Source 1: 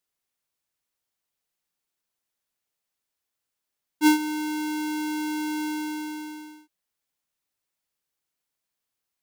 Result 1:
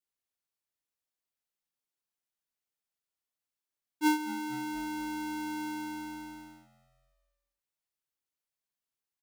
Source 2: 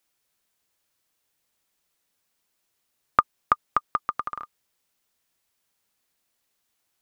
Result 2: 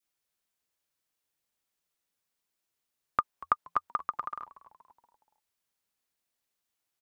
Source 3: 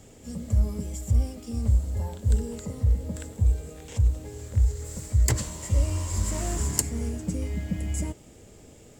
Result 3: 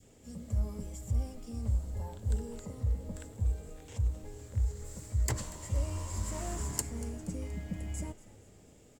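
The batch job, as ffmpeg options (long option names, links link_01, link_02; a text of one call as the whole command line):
ffmpeg -i in.wav -filter_complex "[0:a]adynamicequalizer=threshold=0.00708:dfrequency=930:dqfactor=0.88:tfrequency=930:tqfactor=0.88:attack=5:release=100:ratio=0.375:range=2.5:mode=boostabove:tftype=bell,asplit=5[link_01][link_02][link_03][link_04][link_05];[link_02]adelay=237,afreqshift=-87,volume=-18.5dB[link_06];[link_03]adelay=474,afreqshift=-174,volume=-24.5dB[link_07];[link_04]adelay=711,afreqshift=-261,volume=-30.5dB[link_08];[link_05]adelay=948,afreqshift=-348,volume=-36.6dB[link_09];[link_01][link_06][link_07][link_08][link_09]amix=inputs=5:normalize=0,volume=-9dB" out.wav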